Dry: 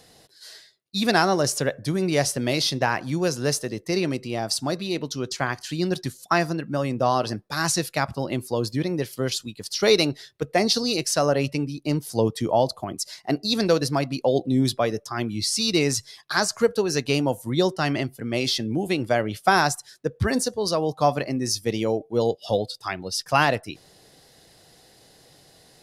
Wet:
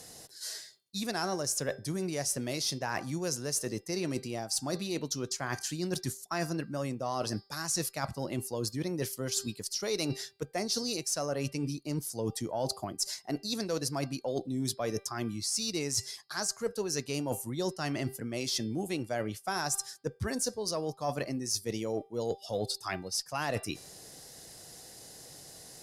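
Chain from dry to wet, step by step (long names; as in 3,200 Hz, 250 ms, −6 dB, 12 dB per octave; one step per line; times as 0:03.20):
high shelf with overshoot 4,900 Hz +7 dB, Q 1.5
hum removal 394.3 Hz, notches 13
reversed playback
downward compressor 6 to 1, threshold −31 dBFS, peak gain reduction 17 dB
reversed playback
harmonic generator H 5 −30 dB, 6 −37 dB, 7 −37 dB, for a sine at −17 dBFS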